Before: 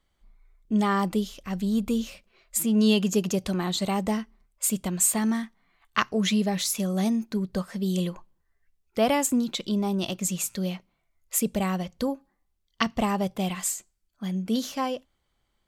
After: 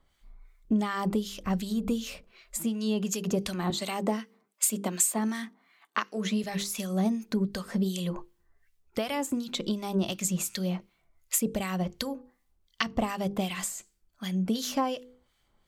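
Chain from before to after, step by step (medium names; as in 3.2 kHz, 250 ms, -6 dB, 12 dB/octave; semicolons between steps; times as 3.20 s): 3.70–6.44 s: high-pass 210 Hz 24 dB/octave; hum notches 50/100/150/200/250/300/350/400/450/500 Hz; compression 6:1, threshold -30 dBFS, peak gain reduction 13 dB; harmonic tremolo 2.7 Hz, depth 70%, crossover 1.4 kHz; trim +7.5 dB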